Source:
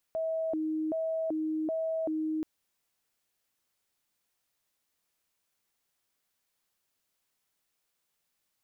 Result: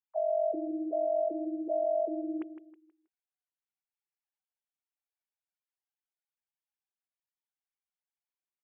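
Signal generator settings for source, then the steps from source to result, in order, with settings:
siren hi-lo 313–646 Hz 1.3 per second sine −28.5 dBFS 2.28 s
three sine waves on the formant tracks
on a send: repeating echo 160 ms, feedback 34%, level −11.5 dB

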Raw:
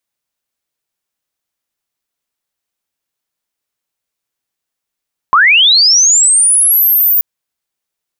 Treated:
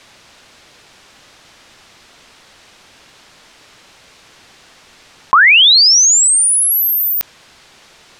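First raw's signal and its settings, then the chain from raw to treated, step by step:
glide linear 1,000 Hz → 15,000 Hz −4 dBFS → −7 dBFS 1.88 s
low-pass filter 4,800 Hz 12 dB per octave
envelope flattener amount 70%

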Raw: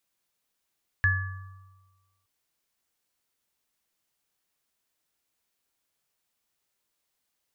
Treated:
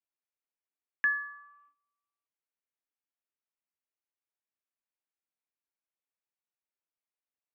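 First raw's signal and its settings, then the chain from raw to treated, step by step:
inharmonic partials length 1.22 s, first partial 95.1 Hz, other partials 1,160/1,710 Hz, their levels −15.5/3.5 dB, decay 1.27 s, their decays 1.63/0.65 s, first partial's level −22 dB
noise gate −54 dBFS, range −16 dB
elliptic band-pass filter 250–2,600 Hz, stop band 40 dB

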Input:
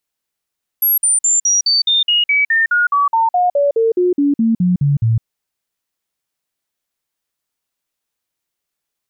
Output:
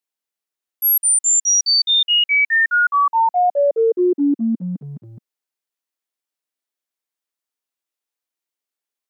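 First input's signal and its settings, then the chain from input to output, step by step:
stepped sweep 11,500 Hz down, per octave 3, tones 21, 0.16 s, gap 0.05 s −10.5 dBFS
noise gate −15 dBFS, range −8 dB
high-pass filter 230 Hz 24 dB per octave

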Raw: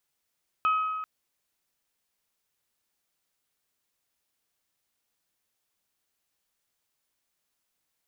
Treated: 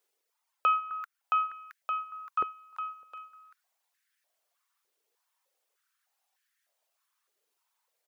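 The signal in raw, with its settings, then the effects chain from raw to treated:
struck glass bell, length 0.39 s, lowest mode 1,270 Hz, modes 3, decay 1.84 s, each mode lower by 11.5 dB, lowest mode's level −20 dB
reverb reduction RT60 1.9 s
bouncing-ball delay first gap 670 ms, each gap 0.85×, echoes 5
high-pass on a step sequencer 3.3 Hz 420–1,700 Hz

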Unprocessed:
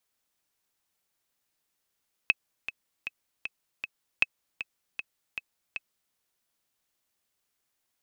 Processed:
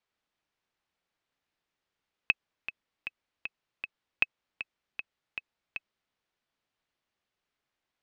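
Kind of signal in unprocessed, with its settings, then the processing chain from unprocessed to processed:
click track 156 BPM, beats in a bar 5, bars 2, 2,580 Hz, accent 12.5 dB −7.5 dBFS
low-pass filter 3,500 Hz 12 dB per octave

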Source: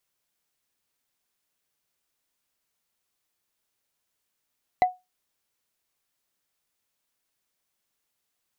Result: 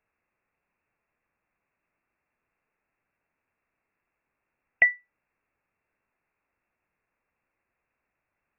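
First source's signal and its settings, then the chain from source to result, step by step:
struck wood, lowest mode 733 Hz, decay 0.21 s, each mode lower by 11 dB, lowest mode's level −12 dB
dynamic equaliser 1,900 Hz, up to −4 dB, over −47 dBFS, Q 1.9
in parallel at 0 dB: brickwall limiter −18 dBFS
on the sum: voice inversion scrambler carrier 2,700 Hz

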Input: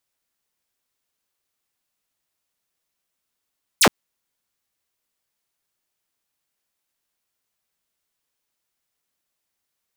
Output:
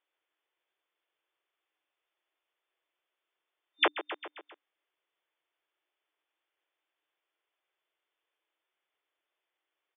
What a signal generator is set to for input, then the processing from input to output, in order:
single falling chirp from 12,000 Hz, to 140 Hz, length 0.07 s saw, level −8 dB
brick-wall band-pass 300–3,600 Hz
repeating echo 133 ms, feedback 54%, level −16 dB
downward compressor 3 to 1, threshold −25 dBFS

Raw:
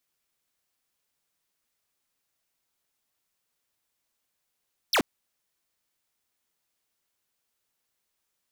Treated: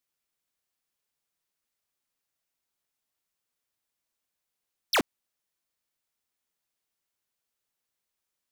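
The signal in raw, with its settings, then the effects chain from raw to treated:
single falling chirp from 6,100 Hz, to 190 Hz, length 0.08 s square, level −22 dB
expander for the loud parts 1.5 to 1, over −33 dBFS

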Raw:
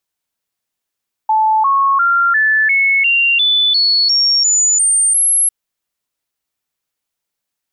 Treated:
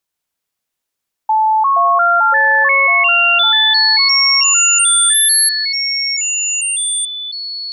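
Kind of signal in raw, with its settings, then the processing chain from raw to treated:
stepped sweep 872 Hz up, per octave 3, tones 12, 0.35 s, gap 0.00 s −9.5 dBFS
delay with pitch and tempo change per echo 136 ms, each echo −4 semitones, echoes 2, each echo −6 dB

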